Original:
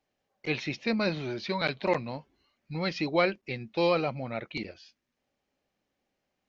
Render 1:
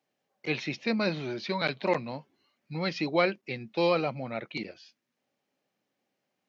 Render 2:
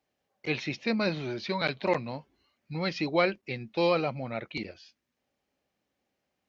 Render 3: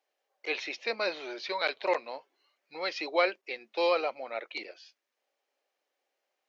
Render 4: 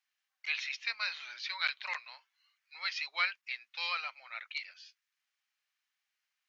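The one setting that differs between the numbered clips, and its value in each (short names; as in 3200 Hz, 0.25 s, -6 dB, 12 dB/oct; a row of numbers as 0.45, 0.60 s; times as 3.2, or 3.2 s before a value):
HPF, cutoff: 120, 43, 420, 1300 Hz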